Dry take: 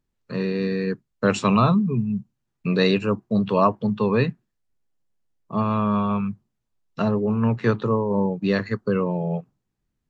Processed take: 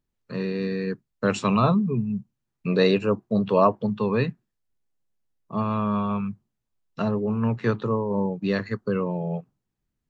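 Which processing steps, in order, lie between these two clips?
1.63–3.86 s: dynamic bell 530 Hz, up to +5 dB, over -32 dBFS, Q 0.96; trim -3 dB

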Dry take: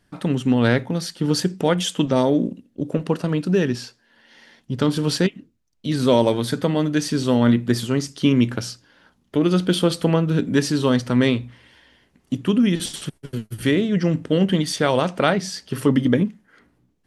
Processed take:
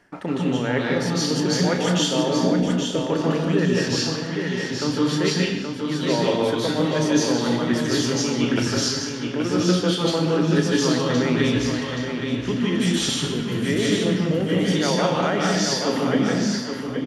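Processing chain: bass shelf 290 Hz -7.5 dB; reverse; compression 6:1, threshold -36 dBFS, peak gain reduction 21 dB; reverse; doubling 33 ms -13 dB; feedback delay 825 ms, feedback 24%, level -6 dB; reverberation RT60 1.1 s, pre-delay 145 ms, DRR -2 dB; trim +6.5 dB

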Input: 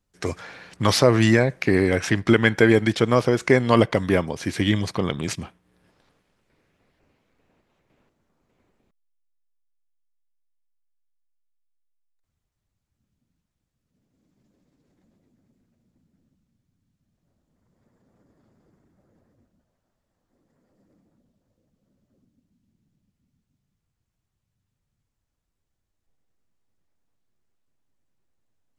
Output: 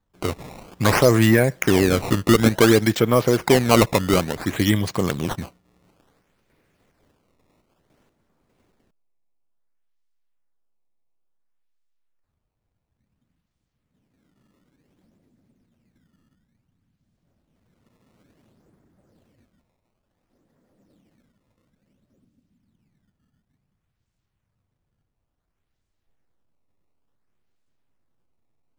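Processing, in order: in parallel at -4 dB: hard clipper -12.5 dBFS, distortion -11 dB; on the sum: decimation with a swept rate 16×, swing 160% 0.57 Hz; trim -2 dB

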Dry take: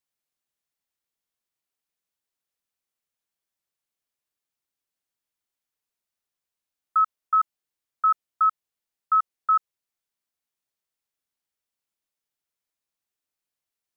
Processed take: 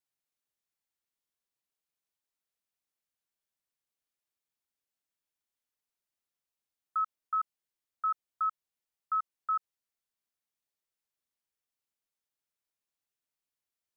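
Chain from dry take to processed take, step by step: peak limiter -20.5 dBFS, peak gain reduction 6 dB; trim -4.5 dB

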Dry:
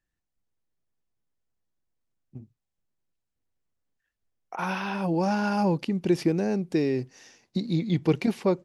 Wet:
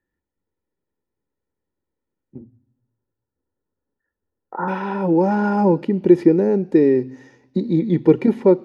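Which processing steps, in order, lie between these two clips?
2.38–4.68 s: steep low-pass 1.8 kHz 72 dB/octave; reverberation RT60 1.0 s, pre-delay 3 ms, DRR 19.5 dB; trim -6 dB

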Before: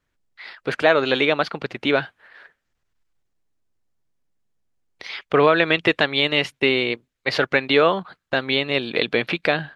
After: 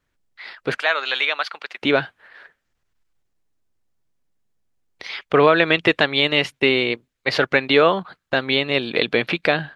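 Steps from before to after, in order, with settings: 0.78–1.82 s: high-pass 1.1 kHz 12 dB/octave; trim +1.5 dB

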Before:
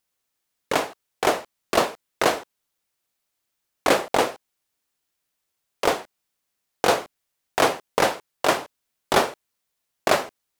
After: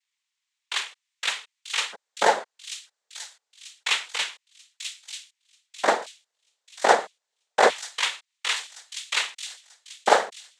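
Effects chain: LFO high-pass square 0.26 Hz 720–2400 Hz; noise-vocoded speech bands 6; on a send: feedback echo behind a high-pass 938 ms, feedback 38%, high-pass 4.6 kHz, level -4 dB; on the sum: trim -2 dB

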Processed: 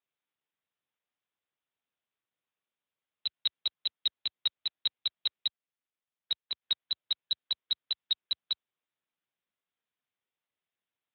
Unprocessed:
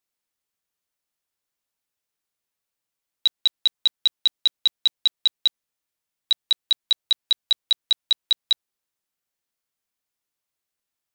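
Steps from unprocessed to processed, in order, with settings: wow and flutter 23 cents; 5.47–6.62 s: level held to a coarse grid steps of 9 dB; trim -3 dB; Speex 18 kbps 8 kHz

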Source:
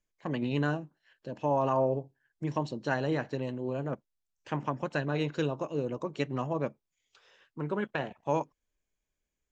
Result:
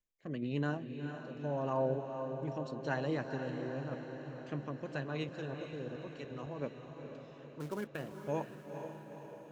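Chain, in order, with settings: 5.24–6.62 s: level held to a coarse grid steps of 18 dB; 7.60–8.17 s: short-mantissa float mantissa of 2-bit; rotary cabinet horn 0.9 Hz; echo that smears into a reverb 465 ms, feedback 62%, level -7 dB; trim -5 dB

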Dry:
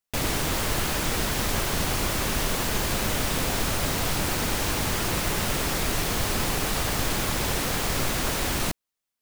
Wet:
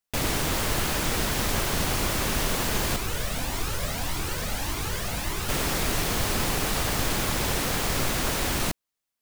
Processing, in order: 2.96–5.49 s: Shepard-style flanger rising 1.7 Hz

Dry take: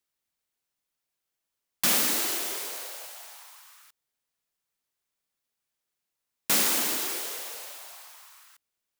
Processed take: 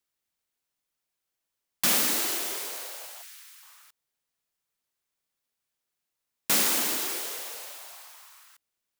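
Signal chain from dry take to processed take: 3.22–3.63 s: high-pass 1.5 kHz 24 dB/octave

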